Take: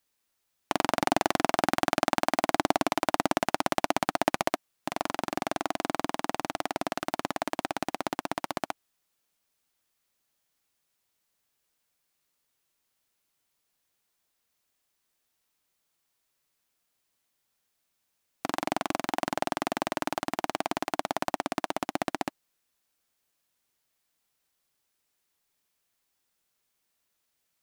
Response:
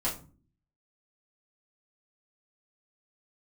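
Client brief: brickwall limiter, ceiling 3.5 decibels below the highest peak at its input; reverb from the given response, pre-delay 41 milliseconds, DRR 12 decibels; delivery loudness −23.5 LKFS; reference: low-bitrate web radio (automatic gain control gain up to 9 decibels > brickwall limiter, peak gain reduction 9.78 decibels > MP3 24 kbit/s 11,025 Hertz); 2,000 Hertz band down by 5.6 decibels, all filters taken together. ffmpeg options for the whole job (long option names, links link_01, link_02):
-filter_complex "[0:a]equalizer=frequency=2000:width_type=o:gain=-7.5,alimiter=limit=-9.5dB:level=0:latency=1,asplit=2[link_01][link_02];[1:a]atrim=start_sample=2205,adelay=41[link_03];[link_02][link_03]afir=irnorm=-1:irlink=0,volume=-18.5dB[link_04];[link_01][link_04]amix=inputs=2:normalize=0,dynaudnorm=maxgain=9dB,alimiter=limit=-14dB:level=0:latency=1,volume=12dB" -ar 11025 -c:a libmp3lame -b:a 24k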